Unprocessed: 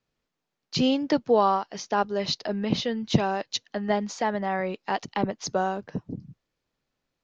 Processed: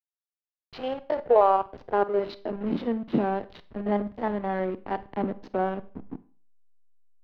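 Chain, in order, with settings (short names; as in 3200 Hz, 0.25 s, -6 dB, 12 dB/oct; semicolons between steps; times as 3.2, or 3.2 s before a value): stepped spectrum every 50 ms; high-pass sweep 780 Hz -> 270 Hz, 0.74–2.74; backlash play -27 dBFS; air absorption 370 m; Schroeder reverb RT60 0.4 s, combs from 31 ms, DRR 15 dB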